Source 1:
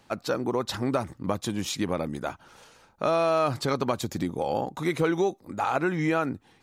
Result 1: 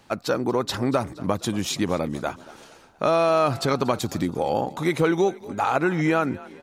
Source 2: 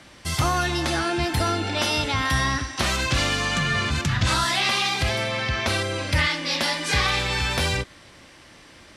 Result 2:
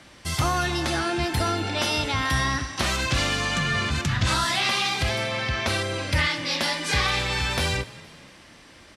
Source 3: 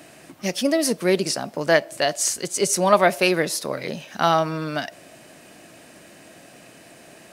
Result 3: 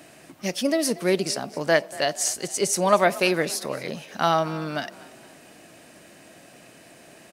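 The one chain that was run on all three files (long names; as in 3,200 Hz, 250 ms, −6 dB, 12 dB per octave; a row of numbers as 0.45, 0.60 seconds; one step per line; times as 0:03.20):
echo with shifted repeats 234 ms, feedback 48%, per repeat +37 Hz, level −20 dB
loudness normalisation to −24 LKFS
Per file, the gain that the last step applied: +4.0, −1.5, −2.5 decibels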